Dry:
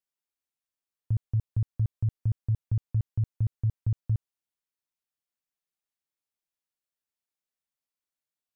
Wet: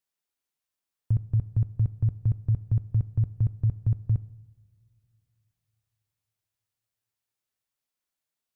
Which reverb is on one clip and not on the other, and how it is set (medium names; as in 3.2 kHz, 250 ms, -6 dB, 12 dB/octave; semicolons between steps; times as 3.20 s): two-slope reverb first 0.8 s, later 3.5 s, from -20 dB, DRR 13.5 dB; trim +3.5 dB